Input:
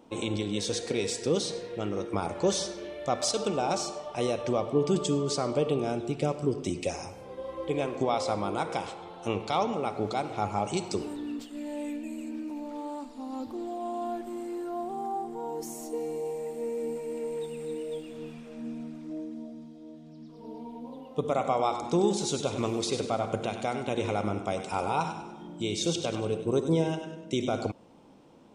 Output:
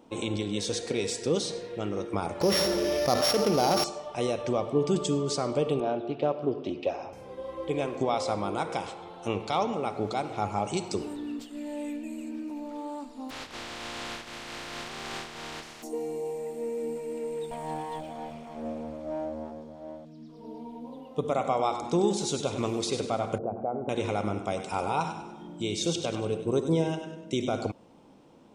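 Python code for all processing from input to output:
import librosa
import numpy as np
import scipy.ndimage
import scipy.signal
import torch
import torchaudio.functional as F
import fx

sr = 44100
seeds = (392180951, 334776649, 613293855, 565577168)

y = fx.chain(x, sr, fx.sample_sort(block=8),
    fx.high_shelf(hz=8800.0, db=-10.5),
    fx.env_flatten(amount_pct=70), at=(2.41, 3.84))
y = fx.chain(y, sr, fx.cabinet(low_hz=160.0, low_slope=12, high_hz=3700.0, hz=(180.0, 640.0, 2100.0), db=(-8, 7, -7)),
    fx.doppler_dist(depth_ms=0.11), at=(5.8, 7.13))
y = fx.spec_flatten(y, sr, power=0.16, at=(13.29, 15.82), fade=0.02)
y = fx.lowpass(y, sr, hz=3900.0, slope=12, at=(13.29, 15.82), fade=0.02)
y = fx.chain(y, sr, fx.lower_of_two(delay_ms=0.91),
    fx.peak_eq(hz=630.0, db=14.5, octaves=0.73), at=(17.51, 20.05))
y = fx.chain(y, sr, fx.envelope_sharpen(power=1.5),
    fx.lowpass(hz=1100.0, slope=24), at=(23.38, 23.89))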